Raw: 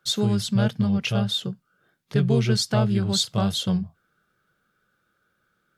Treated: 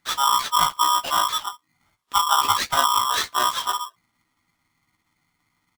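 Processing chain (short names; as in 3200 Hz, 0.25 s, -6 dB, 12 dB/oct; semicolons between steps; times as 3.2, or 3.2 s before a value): delay-line pitch shifter -7.5 st; doubler 14 ms -6 dB; polarity switched at an audio rate 1100 Hz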